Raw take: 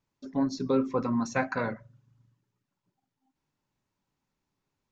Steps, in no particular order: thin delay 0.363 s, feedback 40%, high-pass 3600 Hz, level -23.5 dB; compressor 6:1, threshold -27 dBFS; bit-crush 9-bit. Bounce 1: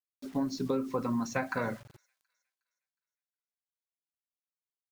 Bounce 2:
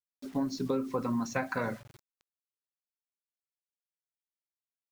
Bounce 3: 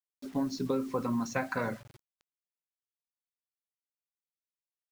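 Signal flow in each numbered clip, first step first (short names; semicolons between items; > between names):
bit-crush > compressor > thin delay; thin delay > bit-crush > compressor; compressor > thin delay > bit-crush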